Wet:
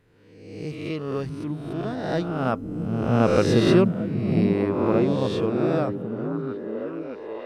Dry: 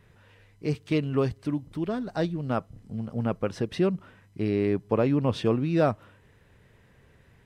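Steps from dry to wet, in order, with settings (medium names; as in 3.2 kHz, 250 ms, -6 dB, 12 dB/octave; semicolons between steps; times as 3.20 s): reverse spectral sustain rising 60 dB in 1.13 s; Doppler pass-by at 3.43 s, 6 m/s, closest 3.7 m; repeats whose band climbs or falls 622 ms, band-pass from 170 Hz, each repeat 0.7 oct, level -1 dB; trim +6.5 dB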